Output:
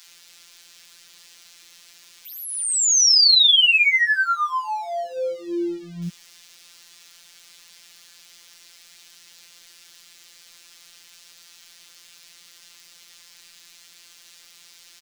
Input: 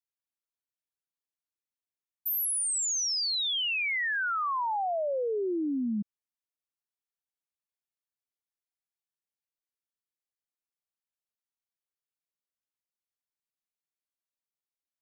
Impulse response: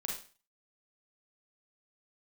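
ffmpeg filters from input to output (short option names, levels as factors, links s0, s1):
-filter_complex "[0:a]aeval=exprs='val(0)+0.5*0.00355*sgn(val(0))':c=same,acrossover=split=5700[s0][s1];[s0]crystalizer=i=9.5:c=0[s2];[s1]acompressor=threshold=0.00316:ratio=6[s3];[s2][s3]amix=inputs=2:normalize=0,afftfilt=real='hypot(re,im)*cos(PI*b)':imag='0':win_size=1024:overlap=0.75,acrossover=split=720[s4][s5];[s4]adelay=70[s6];[s6][s5]amix=inputs=2:normalize=0,volume=1.88"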